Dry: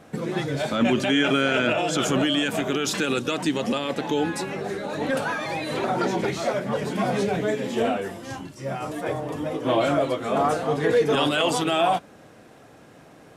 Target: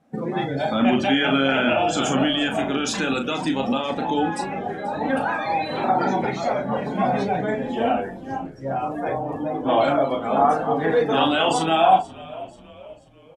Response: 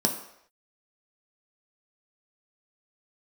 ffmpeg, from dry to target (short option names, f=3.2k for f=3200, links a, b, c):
-filter_complex "[0:a]asplit=2[a][b];[b]aecho=0:1:37|68:0.562|0.178[c];[a][c]amix=inputs=2:normalize=0,afftdn=nr=19:nf=-35,equalizer=f=125:t=o:w=0.33:g=-5,equalizer=f=250:t=o:w=0.33:g=4,equalizer=f=800:t=o:w=0.33:g=9,asplit=2[d][e];[e]asplit=3[f][g][h];[f]adelay=486,afreqshift=-67,volume=-20dB[i];[g]adelay=972,afreqshift=-134,volume=-26.7dB[j];[h]adelay=1458,afreqshift=-201,volume=-33.5dB[k];[i][j][k]amix=inputs=3:normalize=0[l];[d][l]amix=inputs=2:normalize=0,adynamicequalizer=threshold=0.0178:dfrequency=390:dqfactor=2.3:tfrequency=390:tqfactor=2.3:attack=5:release=100:ratio=0.375:range=2:mode=cutabove:tftype=bell"